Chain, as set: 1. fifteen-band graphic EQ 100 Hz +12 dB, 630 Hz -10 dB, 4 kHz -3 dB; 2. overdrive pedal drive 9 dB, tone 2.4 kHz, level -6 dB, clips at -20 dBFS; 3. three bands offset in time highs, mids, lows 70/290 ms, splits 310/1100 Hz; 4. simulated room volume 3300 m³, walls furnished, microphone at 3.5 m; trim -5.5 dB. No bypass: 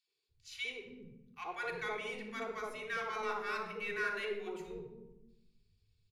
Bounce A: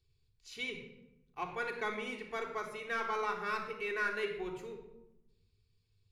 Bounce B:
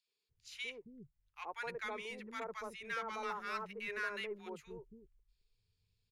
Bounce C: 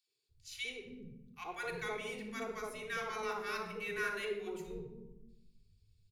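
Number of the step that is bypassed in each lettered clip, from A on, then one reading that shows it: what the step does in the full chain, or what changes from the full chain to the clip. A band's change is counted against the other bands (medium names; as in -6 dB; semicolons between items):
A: 3, echo-to-direct 2.0 dB to -0.5 dB; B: 4, echo-to-direct 2.0 dB to -4.5 dB; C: 2, 8 kHz band +4.5 dB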